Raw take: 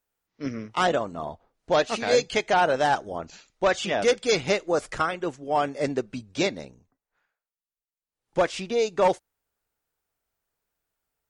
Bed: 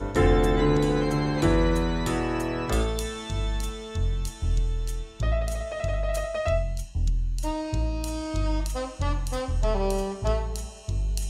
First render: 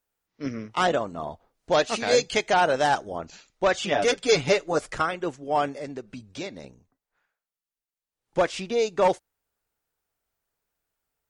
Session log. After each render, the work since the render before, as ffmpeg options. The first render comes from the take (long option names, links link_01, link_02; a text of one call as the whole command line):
ffmpeg -i in.wav -filter_complex "[0:a]asettb=1/sr,asplit=3[link_01][link_02][link_03];[link_01]atrim=end=1.314[link_04];[link_02]atrim=start=1.31:end=3.04,asetpts=PTS-STARTPTS,afade=type=in:duration=0.004:curve=qsin,afade=type=out:start_time=1.726:duration=0.004:curve=qsin,highshelf=frequency=4700:gain=5[link_05];[link_03]atrim=start=3.036[link_06];[link_04][link_05]acrossfade=duration=0.004:curve1=hsin:curve2=qsin[link_07];[link_07][link_06]acrossfade=duration=0.004:curve1=qsin:curve2=hsin,asettb=1/sr,asplit=3[link_08][link_09][link_10];[link_08]atrim=end=3.914[link_11];[link_09]atrim=start=3.91:end=4.78,asetpts=PTS-STARTPTS,afade=type=in:duration=0.004:curve=qsin,afade=type=out:start_time=0.866:duration=0.004:curve=qsin,aecho=1:1:7:0.67,atrim=end_sample=38367[link_12];[link_10]atrim=start=4.776[link_13];[link_11][link_12]acrossfade=duration=0.004:curve1=hsin:curve2=qsin[link_14];[link_14][link_13]acrossfade=duration=0.004:curve1=qsin:curve2=hsin,asettb=1/sr,asplit=3[link_15][link_16][link_17];[link_15]atrim=end=5.784[link_18];[link_16]atrim=start=5.78:end=6.64,asetpts=PTS-STARTPTS,afade=type=in:duration=0.004:curve=qsin,afade=type=out:start_time=0.856:duration=0.004:curve=qsin,acompressor=threshold=-38dB:ratio=2:attack=3.2:release=140:knee=1:detection=peak[link_19];[link_17]atrim=start=6.636[link_20];[link_18][link_19]acrossfade=duration=0.004:curve1=hsin:curve2=qsin[link_21];[link_21][link_20]acrossfade=duration=0.004:curve1=qsin:curve2=hsin" out.wav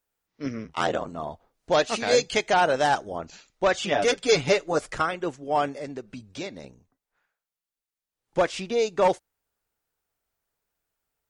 ffmpeg -i in.wav -filter_complex "[0:a]asettb=1/sr,asplit=3[link_01][link_02][link_03];[link_01]atrim=end=0.644[link_04];[link_02]atrim=start=0.64:end=1.08,asetpts=PTS-STARTPTS,afade=type=in:duration=0.004:curve=qsin,afade=type=out:start_time=0.436:duration=0.004:curve=qsin,aeval=exprs='val(0)*sin(2*PI*41*n/s)':channel_layout=same[link_05];[link_03]atrim=start=1.076[link_06];[link_04][link_05]acrossfade=duration=0.004:curve1=hsin:curve2=qsin[link_07];[link_07][link_06]acrossfade=duration=0.004:curve1=qsin:curve2=hsin" out.wav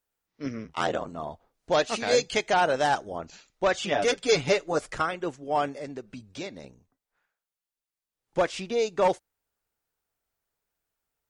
ffmpeg -i in.wav -af "volume=-2dB" out.wav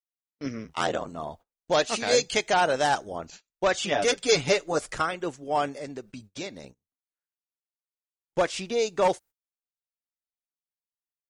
ffmpeg -i in.wav -af "agate=range=-27dB:threshold=-47dB:ratio=16:detection=peak,highshelf=frequency=4900:gain=7" out.wav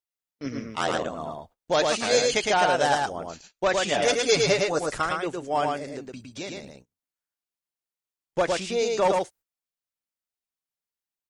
ffmpeg -i in.wav -af "aecho=1:1:110:0.708" out.wav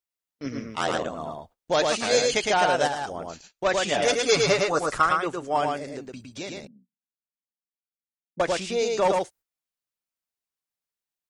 ffmpeg -i in.wav -filter_complex "[0:a]asettb=1/sr,asplit=3[link_01][link_02][link_03];[link_01]atrim=end=2.874[link_04];[link_02]atrim=start=2.87:end=3.65,asetpts=PTS-STARTPTS,afade=type=in:duration=0.004:curve=qsin,afade=type=out:start_time=0.776:duration=0.004:curve=qsin,acompressor=threshold=-27dB:ratio=3:attack=3.2:release=140:knee=1:detection=peak[link_05];[link_03]atrim=start=3.646[link_06];[link_04][link_05]acrossfade=duration=0.004:curve1=hsin:curve2=qsin[link_07];[link_07][link_06]acrossfade=duration=0.004:curve1=qsin:curve2=hsin,asettb=1/sr,asplit=3[link_08][link_09][link_10];[link_08]atrim=end=4.264[link_11];[link_09]atrim=start=4.26:end=5.57,asetpts=PTS-STARTPTS,afade=type=in:duration=0.004:curve=qsin,afade=type=out:start_time=1.306:duration=0.004:curve=qsin,equalizer=frequency=1200:width=2.5:gain=8.5[link_12];[link_10]atrim=start=5.566[link_13];[link_11][link_12]acrossfade=duration=0.004:curve1=hsin:curve2=qsin[link_14];[link_14][link_13]acrossfade=duration=0.004:curve1=qsin:curve2=hsin,asettb=1/sr,asplit=3[link_15][link_16][link_17];[link_15]atrim=end=6.674[link_18];[link_16]atrim=start=6.67:end=8.4,asetpts=PTS-STARTPTS,afade=type=in:duration=0.004:curve=qsin,afade=type=out:start_time=1.726:duration=0.004:curve=qsin,asuperpass=centerf=210:order=4:qfactor=2.9[link_19];[link_17]atrim=start=8.396[link_20];[link_18][link_19]acrossfade=duration=0.004:curve1=hsin:curve2=qsin[link_21];[link_21][link_20]acrossfade=duration=0.004:curve1=qsin:curve2=hsin" out.wav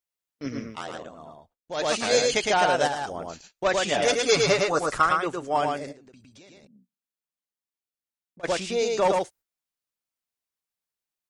ffmpeg -i in.wav -filter_complex "[0:a]asplit=3[link_01][link_02][link_03];[link_01]afade=type=out:start_time=5.91:duration=0.02[link_04];[link_02]acompressor=threshold=-51dB:ratio=4:attack=3.2:release=140:knee=1:detection=peak,afade=type=in:start_time=5.91:duration=0.02,afade=type=out:start_time=8.43:duration=0.02[link_05];[link_03]afade=type=in:start_time=8.43:duration=0.02[link_06];[link_04][link_05][link_06]amix=inputs=3:normalize=0,asplit=3[link_07][link_08][link_09];[link_07]atrim=end=0.83,asetpts=PTS-STARTPTS,afade=type=out:start_time=0.67:duration=0.16:silence=0.298538[link_10];[link_08]atrim=start=0.83:end=1.75,asetpts=PTS-STARTPTS,volume=-10.5dB[link_11];[link_09]atrim=start=1.75,asetpts=PTS-STARTPTS,afade=type=in:duration=0.16:silence=0.298538[link_12];[link_10][link_11][link_12]concat=n=3:v=0:a=1" out.wav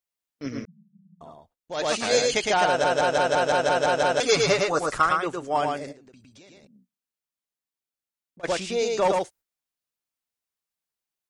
ffmpeg -i in.wav -filter_complex "[0:a]asettb=1/sr,asplit=3[link_01][link_02][link_03];[link_01]atrim=end=0.654[link_04];[link_02]atrim=start=0.65:end=1.21,asetpts=PTS-STARTPTS,afade=type=in:duration=0.004:curve=qsin,afade=type=out:start_time=0.556:duration=0.004:curve=qsin,asuperpass=centerf=180:order=20:qfactor=3.1[link_05];[link_03]atrim=start=1.206[link_06];[link_04][link_05]acrossfade=duration=0.004:curve1=hsin:curve2=qsin[link_07];[link_07][link_06]acrossfade=duration=0.004:curve1=qsin:curve2=hsin,asplit=10[link_08][link_09][link_10][link_11][link_12][link_13][link_14][link_15][link_16][link_17];[link_08]atrim=end=2.842[link_18];[link_09]atrim=start=2.668:end=2.842[link_19];[link_10]atrim=start=2.668:end=2.842[link_20];[link_11]atrim=start=2.668:end=2.842[link_21];[link_12]atrim=start=2.668:end=2.842[link_22];[link_13]atrim=start=2.668:end=2.842[link_23];[link_14]atrim=start=2.668:end=2.842[link_24];[link_15]atrim=start=2.668:end=2.842[link_25];[link_16]atrim=start=2.668:end=2.842[link_26];[link_17]atrim=start=4.198[link_27];[link_18][link_19]acrossfade=duration=0.004:curve1=hsin:curve2=hsin[link_28];[link_28][link_20]acrossfade=duration=0.004:curve1=hsin:curve2=hsin[link_29];[link_29][link_21]acrossfade=duration=0.004:curve1=hsin:curve2=hsin[link_30];[link_30][link_22]acrossfade=duration=0.004:curve1=hsin:curve2=hsin[link_31];[link_31][link_23]acrossfade=duration=0.004:curve1=hsin:curve2=hsin[link_32];[link_32][link_24]acrossfade=duration=0.004:curve1=hsin:curve2=hsin[link_33];[link_33][link_25]acrossfade=duration=0.004:curve1=hsin:curve2=hsin[link_34];[link_34][link_26]acrossfade=duration=0.004:curve1=hsin:curve2=hsin[link_35];[link_35][link_27]acrossfade=duration=0.004:curve1=hsin:curve2=hsin" out.wav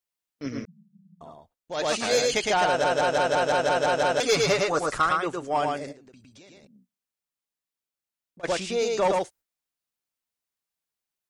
ffmpeg -i in.wav -af "asoftclip=type=tanh:threshold=-13.5dB" out.wav